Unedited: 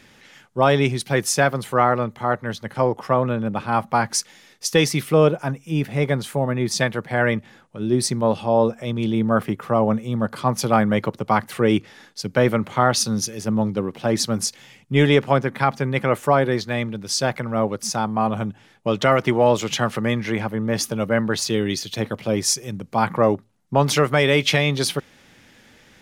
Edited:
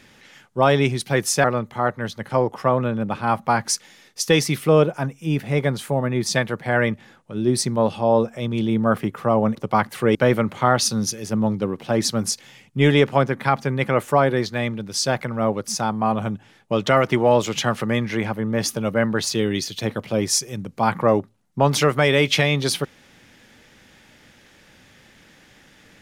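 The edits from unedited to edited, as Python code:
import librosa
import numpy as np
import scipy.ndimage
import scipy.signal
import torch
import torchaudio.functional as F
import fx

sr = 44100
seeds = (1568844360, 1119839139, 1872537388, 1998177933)

y = fx.edit(x, sr, fx.cut(start_s=1.44, length_s=0.45),
    fx.cut(start_s=10.0, length_s=1.12),
    fx.cut(start_s=11.72, length_s=0.58), tone=tone)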